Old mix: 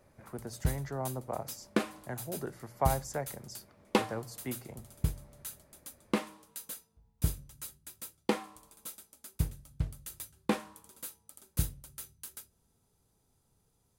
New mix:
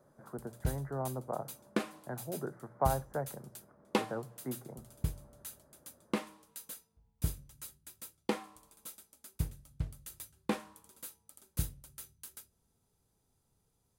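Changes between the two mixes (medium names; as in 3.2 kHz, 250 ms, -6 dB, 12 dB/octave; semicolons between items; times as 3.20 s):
speech: add elliptic band-pass 130–1500 Hz, stop band 40 dB; background -3.5 dB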